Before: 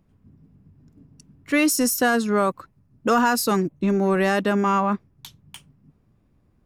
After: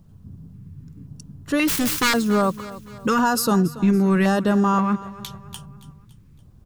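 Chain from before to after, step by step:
0:01.67–0:02.14: phase distortion by the signal itself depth 0.57 ms
low shelf with overshoot 200 Hz +7 dB, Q 1.5
mains-hum notches 50/100/150 Hz
in parallel at +1 dB: downward compressor, threshold −36 dBFS, peak gain reduction 19 dB
on the sum: auto-filter notch square 0.94 Hz 670–2,200 Hz
bit reduction 12 bits
repeating echo 282 ms, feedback 46%, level −17 dB

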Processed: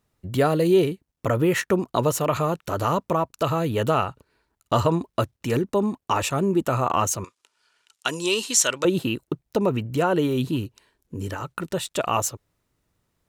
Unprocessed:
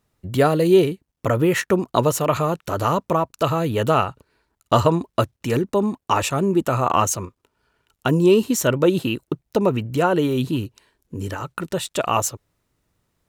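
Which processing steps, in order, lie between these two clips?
0:07.24–0:08.85: meter weighting curve ITU-R 468
in parallel at −0.5 dB: brickwall limiter −10 dBFS, peak gain reduction 8.5 dB
on the sum: level −8 dB

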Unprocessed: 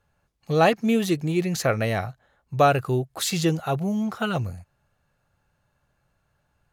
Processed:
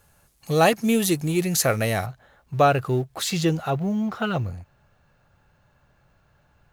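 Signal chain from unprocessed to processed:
mu-law and A-law mismatch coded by mu
parametric band 11,000 Hz +13 dB 1.4 octaves, from 0:02.06 −3.5 dB, from 0:03.70 −11 dB

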